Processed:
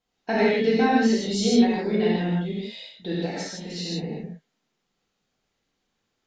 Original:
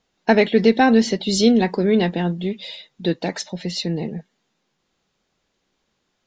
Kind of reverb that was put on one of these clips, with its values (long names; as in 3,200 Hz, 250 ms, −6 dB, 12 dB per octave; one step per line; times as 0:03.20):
reverb whose tail is shaped and stops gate 200 ms flat, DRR −7.5 dB
level −13 dB